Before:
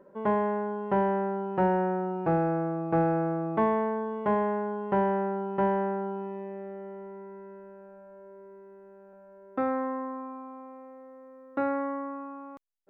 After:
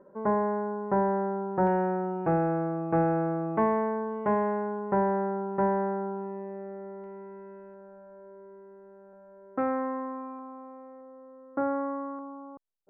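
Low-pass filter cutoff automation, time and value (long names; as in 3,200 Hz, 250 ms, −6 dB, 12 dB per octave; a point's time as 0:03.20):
low-pass filter 24 dB per octave
1,700 Hz
from 0:01.67 2,400 Hz
from 0:04.79 1,900 Hz
from 0:07.04 2,900 Hz
from 0:07.74 1,900 Hz
from 0:09.59 2,800 Hz
from 0:10.39 1,900 Hz
from 0:11.01 1,500 Hz
from 0:12.19 1,100 Hz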